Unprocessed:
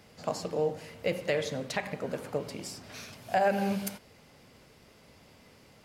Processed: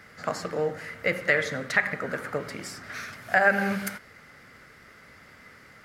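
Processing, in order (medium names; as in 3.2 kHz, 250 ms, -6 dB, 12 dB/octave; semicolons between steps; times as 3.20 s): high-order bell 1.6 kHz +13.5 dB 1 oct; trim +1.5 dB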